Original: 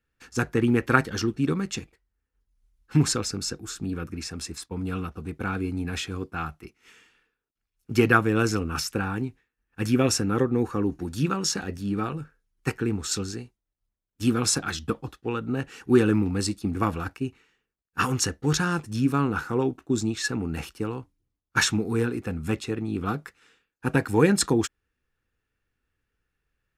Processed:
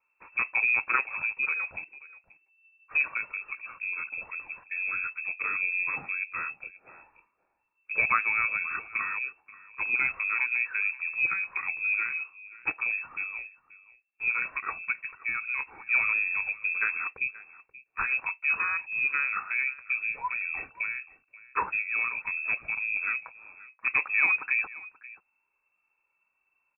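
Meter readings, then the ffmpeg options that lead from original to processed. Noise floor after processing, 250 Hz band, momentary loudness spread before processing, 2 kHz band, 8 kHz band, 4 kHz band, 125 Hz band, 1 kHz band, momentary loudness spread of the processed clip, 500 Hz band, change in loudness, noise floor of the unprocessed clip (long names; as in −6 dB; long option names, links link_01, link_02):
−77 dBFS, below −30 dB, 12 LU, +6.0 dB, below −40 dB, below −40 dB, below −30 dB, −4.0 dB, 12 LU, −24.0 dB, −1.5 dB, −84 dBFS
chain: -filter_complex "[0:a]asplit=2[link_01][link_02];[link_02]acompressor=threshold=-36dB:ratio=6,volume=0.5dB[link_03];[link_01][link_03]amix=inputs=2:normalize=0,aphaser=in_gain=1:out_gain=1:delay=2.6:decay=0.29:speed=0.17:type=triangular,asoftclip=type=tanh:threshold=-8.5dB,aecho=1:1:531:0.106,lowpass=frequency=2300:width_type=q:width=0.5098,lowpass=frequency=2300:width_type=q:width=0.6013,lowpass=frequency=2300:width_type=q:width=0.9,lowpass=frequency=2300:width_type=q:width=2.563,afreqshift=-2700,volume=-5.5dB"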